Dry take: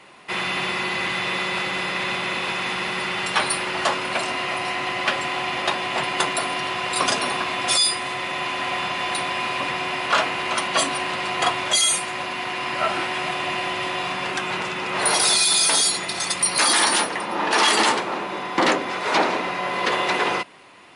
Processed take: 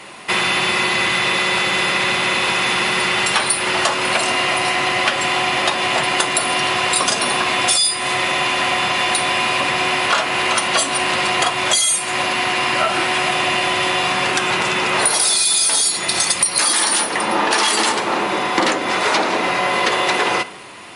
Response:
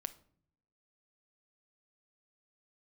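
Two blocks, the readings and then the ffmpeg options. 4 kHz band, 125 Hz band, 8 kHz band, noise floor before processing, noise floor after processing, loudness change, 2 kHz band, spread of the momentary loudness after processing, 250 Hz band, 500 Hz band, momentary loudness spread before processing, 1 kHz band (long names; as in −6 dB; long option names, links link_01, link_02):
+5.0 dB, +5.5 dB, +5.5 dB, −30 dBFS, −24 dBFS, +5.5 dB, +6.0 dB, 4 LU, +4.5 dB, +5.0 dB, 9 LU, +4.5 dB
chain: -filter_complex "[0:a]highshelf=frequency=6300:gain=9,acompressor=threshold=-24dB:ratio=6,asplit=2[link_01][link_02];[1:a]atrim=start_sample=2205,asetrate=29988,aresample=44100[link_03];[link_02][link_03]afir=irnorm=-1:irlink=0,volume=11dB[link_04];[link_01][link_04]amix=inputs=2:normalize=0,volume=-3dB"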